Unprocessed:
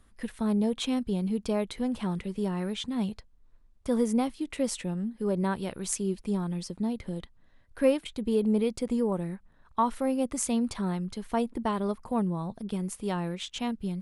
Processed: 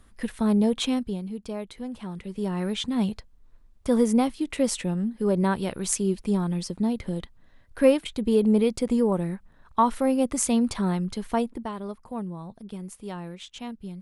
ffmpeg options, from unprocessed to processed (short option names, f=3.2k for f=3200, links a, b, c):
-af "volume=15dB,afade=t=out:st=0.81:d=0.43:silence=0.316228,afade=t=in:st=2.13:d=0.64:silence=0.316228,afade=t=out:st=11.24:d=0.45:silence=0.316228"